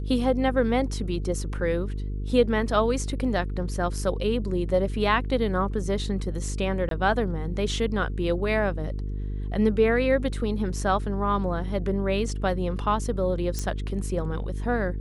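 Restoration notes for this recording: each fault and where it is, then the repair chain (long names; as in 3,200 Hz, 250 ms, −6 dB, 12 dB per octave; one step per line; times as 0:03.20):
mains buzz 50 Hz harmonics 9 −30 dBFS
0:06.89–0:06.91: drop-out 22 ms
0:13.59: click −15 dBFS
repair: click removal
hum removal 50 Hz, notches 9
repair the gap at 0:06.89, 22 ms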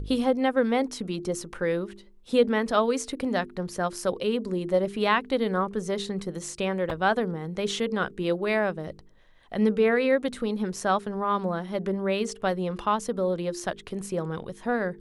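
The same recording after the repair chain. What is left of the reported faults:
none of them is left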